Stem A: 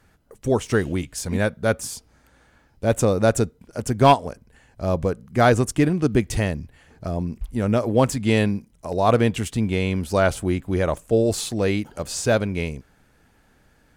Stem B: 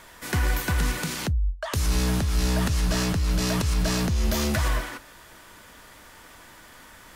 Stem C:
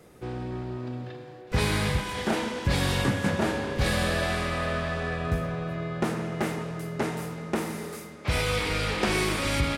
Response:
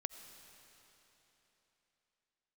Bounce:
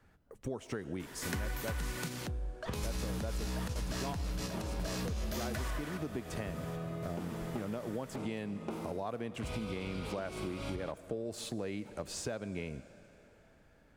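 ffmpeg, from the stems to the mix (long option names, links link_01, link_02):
-filter_complex "[0:a]acrossover=split=130[link_01][link_02];[link_01]acompressor=threshold=-39dB:ratio=6[link_03];[link_03][link_02]amix=inputs=2:normalize=0,volume=-8dB,asplit=3[link_04][link_05][link_06];[link_05]volume=-11.5dB[link_07];[1:a]adelay=1000,volume=-3.5dB[link_08];[2:a]equalizer=frequency=1800:width_type=o:width=0.35:gain=-13.5,adelay=1150,volume=-7dB,asplit=2[link_09][link_10];[link_10]volume=-18dB[link_11];[link_06]apad=whole_len=359792[link_12];[link_08][link_12]sidechaingate=range=-8dB:threshold=-55dB:ratio=16:detection=peak[link_13];[link_04][link_09]amix=inputs=2:normalize=0,equalizer=frequency=10000:width=0.4:gain=-10.5,acompressor=threshold=-34dB:ratio=6,volume=0dB[link_14];[3:a]atrim=start_sample=2205[link_15];[link_07][link_11]amix=inputs=2:normalize=0[link_16];[link_16][link_15]afir=irnorm=-1:irlink=0[link_17];[link_13][link_14][link_17]amix=inputs=3:normalize=0,acompressor=threshold=-34dB:ratio=6"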